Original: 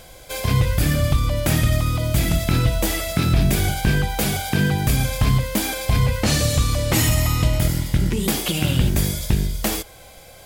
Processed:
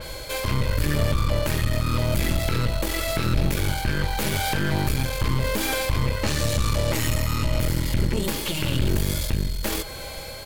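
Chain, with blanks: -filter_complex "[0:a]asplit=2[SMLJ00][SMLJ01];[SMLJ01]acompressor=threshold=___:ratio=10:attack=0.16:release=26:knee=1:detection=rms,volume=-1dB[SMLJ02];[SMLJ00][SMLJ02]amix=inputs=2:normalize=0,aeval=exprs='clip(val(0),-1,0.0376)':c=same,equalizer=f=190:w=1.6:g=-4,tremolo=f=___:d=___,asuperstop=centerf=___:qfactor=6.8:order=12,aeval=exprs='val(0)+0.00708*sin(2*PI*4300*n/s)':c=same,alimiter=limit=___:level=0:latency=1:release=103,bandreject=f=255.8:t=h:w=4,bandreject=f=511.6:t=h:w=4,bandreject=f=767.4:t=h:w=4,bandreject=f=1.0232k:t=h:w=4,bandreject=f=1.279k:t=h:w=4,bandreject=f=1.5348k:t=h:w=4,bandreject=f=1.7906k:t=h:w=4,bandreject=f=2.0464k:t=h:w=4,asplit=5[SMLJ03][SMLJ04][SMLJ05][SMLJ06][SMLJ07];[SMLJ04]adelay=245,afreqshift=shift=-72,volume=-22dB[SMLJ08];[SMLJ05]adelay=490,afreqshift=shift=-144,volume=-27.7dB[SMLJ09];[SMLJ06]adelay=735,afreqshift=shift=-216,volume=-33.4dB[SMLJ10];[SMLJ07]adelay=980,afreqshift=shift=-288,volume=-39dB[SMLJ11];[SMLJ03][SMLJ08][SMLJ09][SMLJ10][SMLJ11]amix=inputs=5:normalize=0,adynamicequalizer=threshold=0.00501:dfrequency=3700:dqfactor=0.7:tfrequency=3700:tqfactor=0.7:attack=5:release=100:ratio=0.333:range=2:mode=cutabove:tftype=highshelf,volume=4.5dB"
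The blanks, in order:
-32dB, 0.89, 0.48, 720, -15.5dB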